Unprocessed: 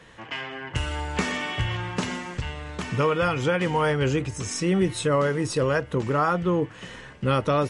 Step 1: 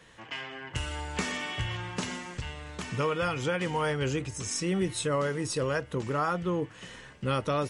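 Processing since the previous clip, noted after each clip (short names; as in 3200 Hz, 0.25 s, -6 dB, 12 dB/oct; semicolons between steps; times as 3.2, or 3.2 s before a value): high shelf 3900 Hz +7 dB; gain -6.5 dB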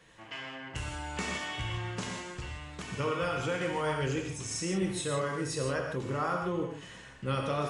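reverb, pre-delay 3 ms, DRR 0.5 dB; gain -5 dB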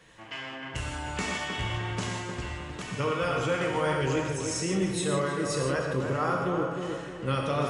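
tape echo 0.308 s, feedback 49%, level -3.5 dB, low-pass 1600 Hz; gain +3 dB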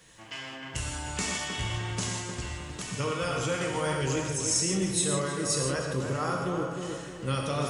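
tone controls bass +3 dB, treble +12 dB; gain -3 dB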